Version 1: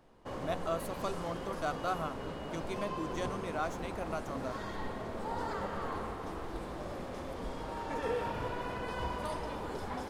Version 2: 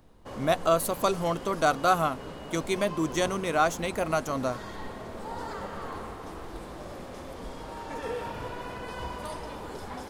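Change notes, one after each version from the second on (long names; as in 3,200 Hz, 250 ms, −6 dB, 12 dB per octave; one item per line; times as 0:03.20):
speech +11.5 dB
master: add high-shelf EQ 4,400 Hz +6 dB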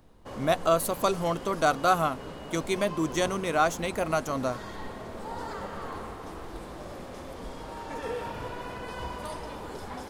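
nothing changed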